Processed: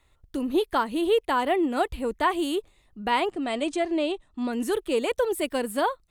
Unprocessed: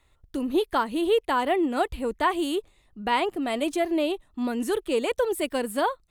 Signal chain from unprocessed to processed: 3.3–4.53 Chebyshev low-pass 8700 Hz, order 4

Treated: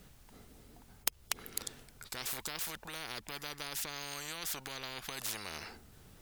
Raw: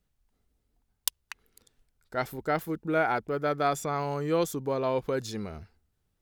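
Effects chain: compressor 4:1, threshold -33 dBFS, peak gain reduction 10.5 dB; spectral compressor 10:1; gain +4 dB

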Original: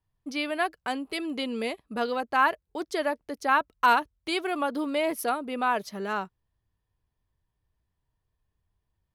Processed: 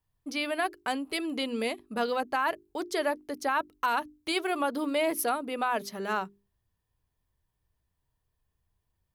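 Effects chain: high shelf 9000 Hz +7 dB; notches 50/100/150/200/250/300/350/400 Hz; limiter -18 dBFS, peak gain reduction 9 dB

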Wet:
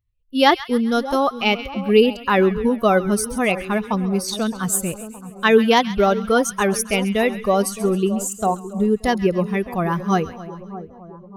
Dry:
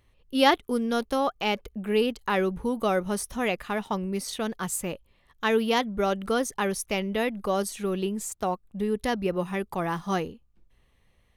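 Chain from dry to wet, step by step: per-bin expansion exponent 1.5; AGC gain up to 8 dB; split-band echo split 1100 Hz, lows 0.617 s, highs 0.134 s, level -14 dB; gain +3.5 dB

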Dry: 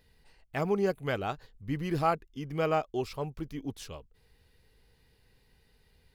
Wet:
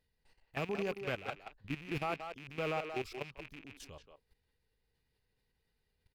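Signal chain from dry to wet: rattling part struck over -41 dBFS, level -23 dBFS; level quantiser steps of 15 dB; speakerphone echo 0.18 s, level -6 dB; gain -5 dB

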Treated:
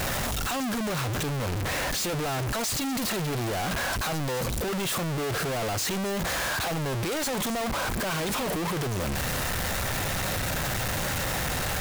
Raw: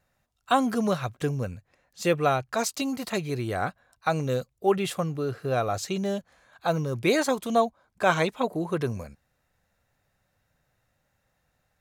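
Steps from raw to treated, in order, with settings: infinite clipping

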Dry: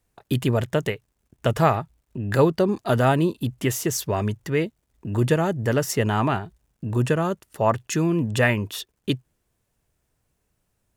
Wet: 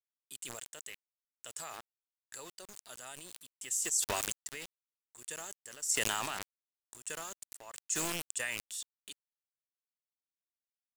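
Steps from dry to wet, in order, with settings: band-pass 7900 Hz, Q 4.8; sample gate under -58 dBFS; sustainer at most 23 dB/s; gain +3 dB

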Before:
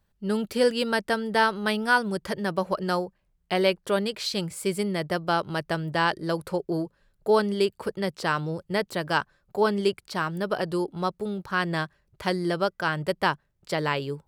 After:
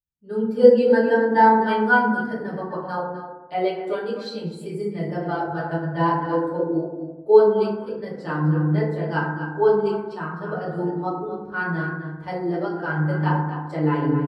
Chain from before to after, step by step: outdoor echo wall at 44 m, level -6 dB; FDN reverb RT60 1.4 s, low-frequency decay 1.35×, high-frequency decay 0.35×, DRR -7 dB; spectral expander 1.5:1; gain -1 dB

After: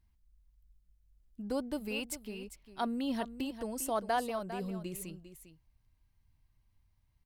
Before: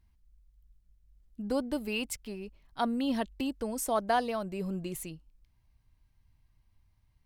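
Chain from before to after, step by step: high shelf 10000 Hz +3 dB; on a send: echo 0.401 s -12 dB; on the sum: gain -4 dB

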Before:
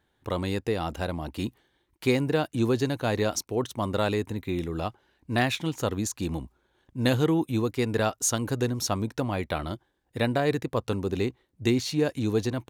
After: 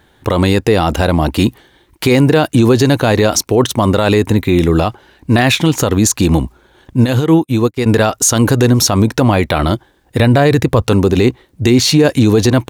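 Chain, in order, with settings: 10.19–10.82 bell 86 Hz +9 dB 1.1 oct; maximiser +21.5 dB; 7.04–7.86 upward expander 2.5:1, over -27 dBFS; gain -1 dB

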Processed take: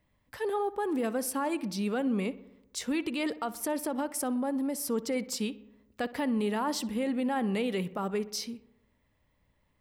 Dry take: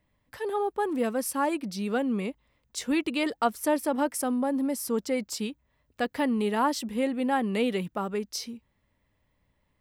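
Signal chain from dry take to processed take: 3.86–4.9 compressor, threshold -27 dBFS, peak gain reduction 6.5 dB; limiter -23 dBFS, peak gain reduction 10.5 dB; on a send: darkening echo 62 ms, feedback 65%, low-pass 2700 Hz, level -17 dB

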